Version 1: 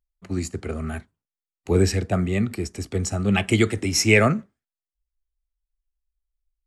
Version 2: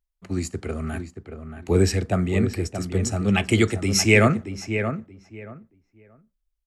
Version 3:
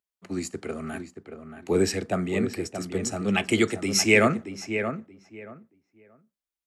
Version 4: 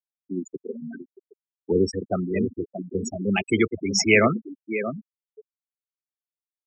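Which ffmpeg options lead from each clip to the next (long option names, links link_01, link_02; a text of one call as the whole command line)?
ffmpeg -i in.wav -filter_complex "[0:a]asplit=2[link_01][link_02];[link_02]adelay=628,lowpass=frequency=2100:poles=1,volume=-8dB,asplit=2[link_03][link_04];[link_04]adelay=628,lowpass=frequency=2100:poles=1,volume=0.21,asplit=2[link_05][link_06];[link_06]adelay=628,lowpass=frequency=2100:poles=1,volume=0.21[link_07];[link_01][link_03][link_05][link_07]amix=inputs=4:normalize=0" out.wav
ffmpeg -i in.wav -af "highpass=190,volume=-1.5dB" out.wav
ffmpeg -i in.wav -af "afftfilt=real='re*gte(hypot(re,im),0.112)':imag='im*gte(hypot(re,im),0.112)':win_size=1024:overlap=0.75,volume=1.5dB" out.wav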